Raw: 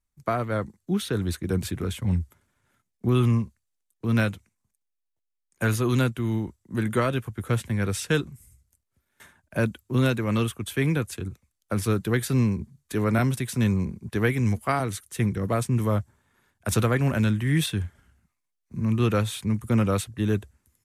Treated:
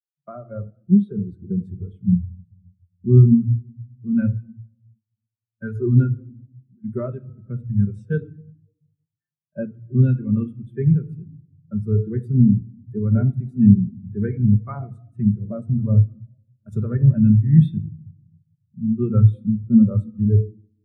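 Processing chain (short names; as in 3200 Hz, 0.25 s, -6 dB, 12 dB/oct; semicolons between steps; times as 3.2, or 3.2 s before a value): 6.2–6.84 compressor, threshold -37 dBFS, peak gain reduction 14.5 dB; shoebox room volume 2100 m³, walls mixed, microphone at 1.2 m; spectral expander 2.5:1; gain +8 dB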